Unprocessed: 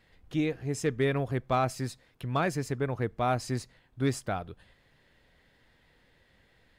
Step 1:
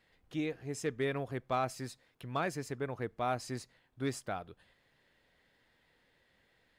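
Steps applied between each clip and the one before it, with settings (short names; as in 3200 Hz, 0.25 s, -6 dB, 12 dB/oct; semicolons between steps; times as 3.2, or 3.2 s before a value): low shelf 150 Hz -9 dB; gain -5 dB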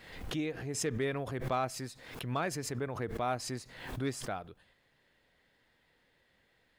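backwards sustainer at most 64 dB/s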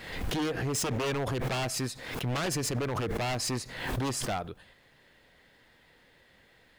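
in parallel at -0.5 dB: limiter -32 dBFS, peak gain reduction 10.5 dB; on the sum: wavefolder -29 dBFS; gain +4 dB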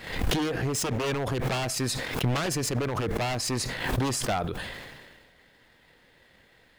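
transient shaper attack +10 dB, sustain -2 dB; sustainer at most 34 dB/s; gain +1 dB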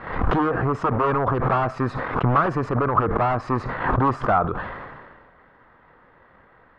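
synth low-pass 1200 Hz, resonance Q 3.9; gain +5 dB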